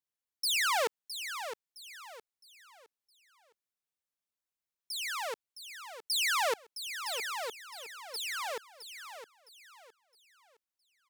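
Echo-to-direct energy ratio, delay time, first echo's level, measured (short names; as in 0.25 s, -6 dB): -9.5 dB, 0.663 s, -10.0 dB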